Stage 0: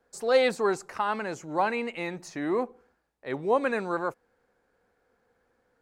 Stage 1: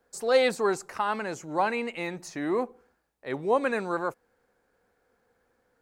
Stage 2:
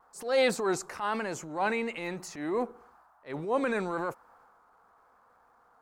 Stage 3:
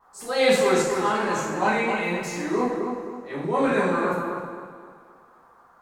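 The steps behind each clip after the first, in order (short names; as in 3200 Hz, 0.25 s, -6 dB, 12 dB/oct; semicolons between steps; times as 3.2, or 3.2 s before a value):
high shelf 7700 Hz +6 dB
vibrato 1 Hz 49 cents; band noise 680–1400 Hz -62 dBFS; transient shaper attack -9 dB, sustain +4 dB; gain -1.5 dB
darkening echo 0.261 s, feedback 36%, low-pass 2300 Hz, level -5 dB; reverb, pre-delay 3 ms, DRR -8 dB; gain -1.5 dB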